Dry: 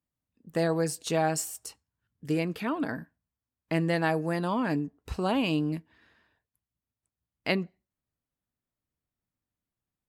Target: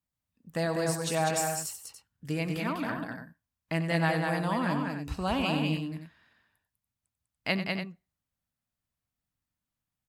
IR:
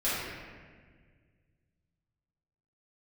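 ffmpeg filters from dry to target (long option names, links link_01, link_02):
-filter_complex "[0:a]equalizer=frequency=380:width_type=o:width=0.98:gain=-8.5,asplit=2[link_01][link_02];[link_02]aecho=0:1:93.29|198.3|288.6:0.282|0.631|0.316[link_03];[link_01][link_03]amix=inputs=2:normalize=0"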